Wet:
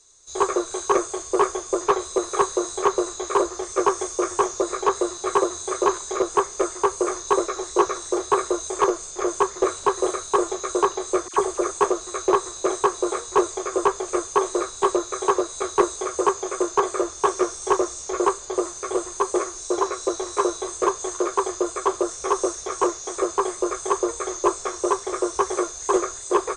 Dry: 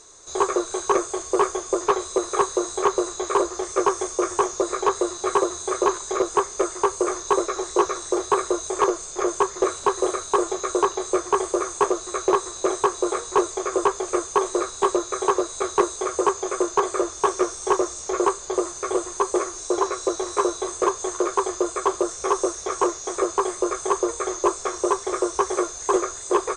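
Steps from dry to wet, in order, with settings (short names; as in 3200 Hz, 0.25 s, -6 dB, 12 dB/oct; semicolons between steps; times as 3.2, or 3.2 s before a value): 11.28–11.71 dispersion lows, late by 57 ms, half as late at 1500 Hz; three-band expander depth 40%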